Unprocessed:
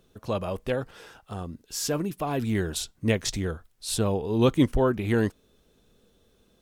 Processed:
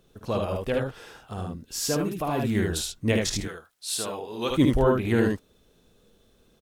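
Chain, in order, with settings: 3.40–4.50 s: high-pass 1.1 kHz 6 dB/octave; early reflections 52 ms -8 dB, 75 ms -3.5 dB

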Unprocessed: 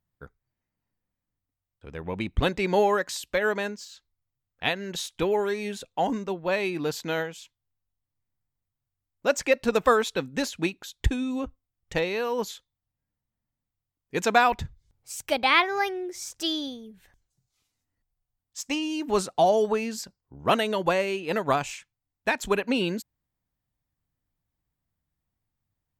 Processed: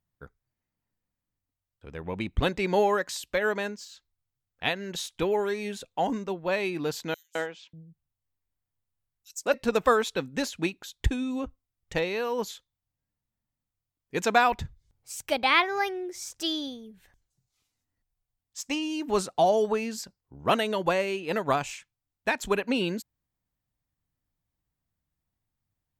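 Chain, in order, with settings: 7.14–9.54 s: three bands offset in time highs, mids, lows 210/590 ms, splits 180/5500 Hz; trim -1.5 dB

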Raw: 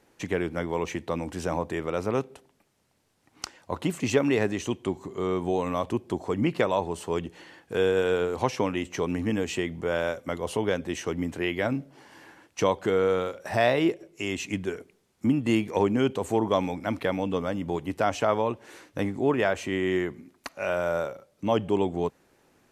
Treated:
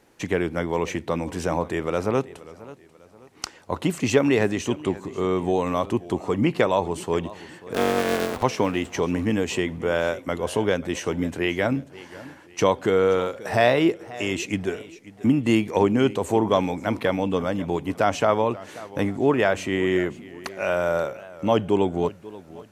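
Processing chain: 7.74–8.44 s: cycle switcher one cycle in 2, muted; modulated delay 535 ms, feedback 37%, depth 125 cents, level -18.5 dB; trim +4 dB

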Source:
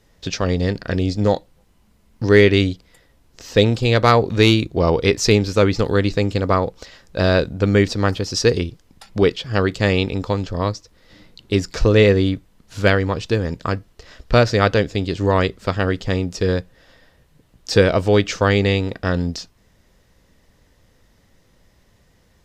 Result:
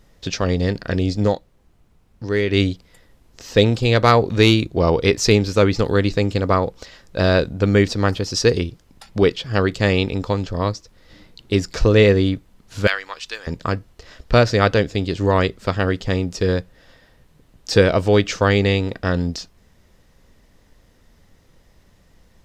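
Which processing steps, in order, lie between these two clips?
1.26–2.60 s: dip -8.5 dB, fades 0.13 s; 12.87–13.47 s: high-pass 1.3 kHz 12 dB/octave; added noise brown -55 dBFS

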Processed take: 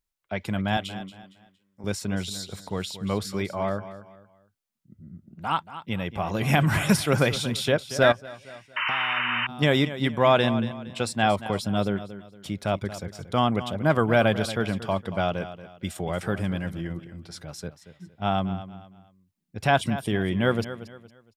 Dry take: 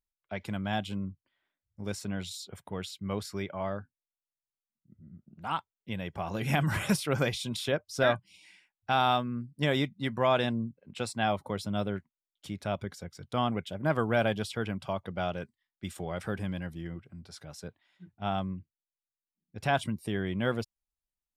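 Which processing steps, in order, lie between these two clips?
0.77–1.84 s: high-pass 620 Hz 6 dB/octave; on a send: feedback delay 231 ms, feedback 32%, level -13.5 dB; 8.12–9.49 s: on the sum: compression 4:1, threshold -43 dBFS, peak gain reduction 18 dB; 8.76–9.47 s: painted sound noise 890–3100 Hz -33 dBFS; trim +6.5 dB

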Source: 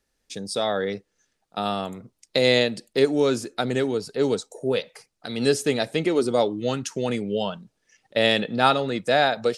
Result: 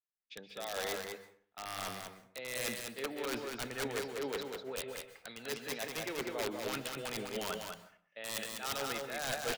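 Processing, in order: low-pass 3.1 kHz 24 dB/octave; tilt shelf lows -9 dB, about 640 Hz; hum notches 50/100/150/200 Hz; reverse; compression 16:1, threshold -29 dBFS, peak gain reduction 20.5 dB; reverse; integer overflow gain 23.5 dB; delay 198 ms -3.5 dB; plate-style reverb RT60 0.67 s, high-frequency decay 0.55×, pre-delay 115 ms, DRR 10 dB; three bands expanded up and down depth 70%; trim -6 dB

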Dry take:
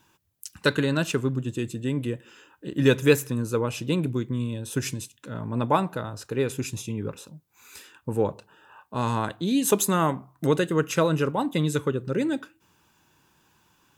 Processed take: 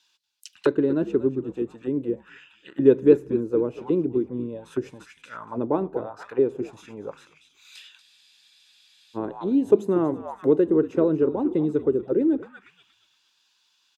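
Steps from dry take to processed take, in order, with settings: frequency-shifting echo 236 ms, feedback 41%, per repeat -73 Hz, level -13.5 dB; auto-wah 360–4300 Hz, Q 2.9, down, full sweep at -23 dBFS; spectral freeze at 8.03 s, 1.13 s; trim +8 dB

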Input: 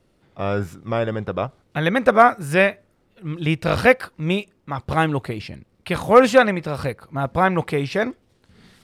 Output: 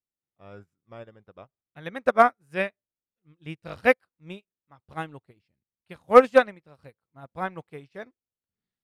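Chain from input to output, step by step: upward expansion 2.5:1, over -34 dBFS

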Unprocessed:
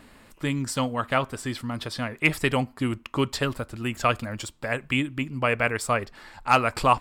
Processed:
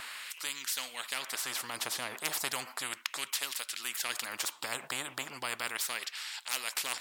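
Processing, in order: LFO high-pass sine 0.35 Hz 700–3100 Hz; spectrum-flattening compressor 4:1; trim -9 dB

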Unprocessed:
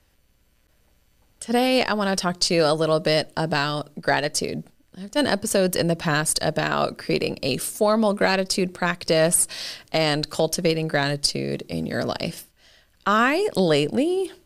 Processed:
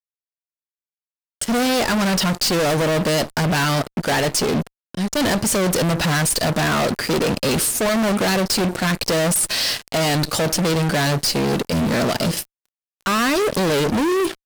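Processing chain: dynamic bell 190 Hz, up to +3 dB, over -32 dBFS, Q 0.8; fuzz box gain 36 dB, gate -42 dBFS; trim -4 dB

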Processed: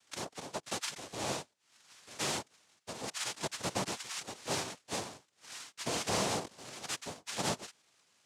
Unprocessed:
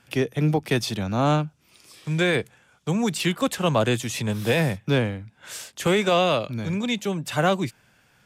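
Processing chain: high-pass 500 Hz 24 dB/octave; dynamic bell 970 Hz, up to -5 dB, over -35 dBFS, Q 1.2; noise-vocoded speech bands 2; trim -9 dB

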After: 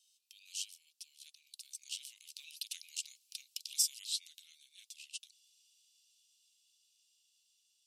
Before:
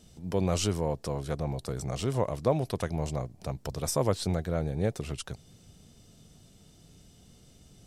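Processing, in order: Doppler pass-by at 3.19 s, 12 m/s, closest 7.4 m; Chebyshev high-pass 2.7 kHz, order 5; trim +6.5 dB

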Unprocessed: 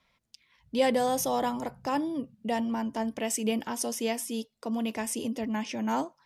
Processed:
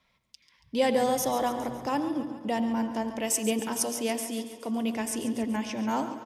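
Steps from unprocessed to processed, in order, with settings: 3.23–3.88 s: treble shelf 5.3 kHz +6 dB; feedback delay 140 ms, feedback 59%, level -12.5 dB; on a send at -11.5 dB: reverberation RT60 2.2 s, pre-delay 80 ms

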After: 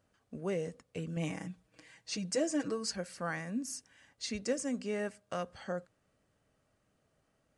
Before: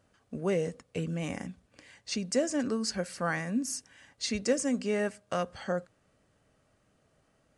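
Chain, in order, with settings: 1.16–2.96 s: comb 6.3 ms, depth 100%; trim -6 dB

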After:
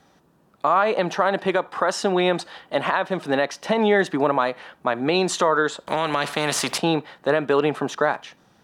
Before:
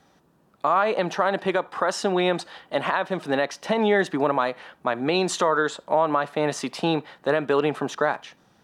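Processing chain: 5.87–6.78 s: spectrum-flattening compressor 2:1; trim +2 dB

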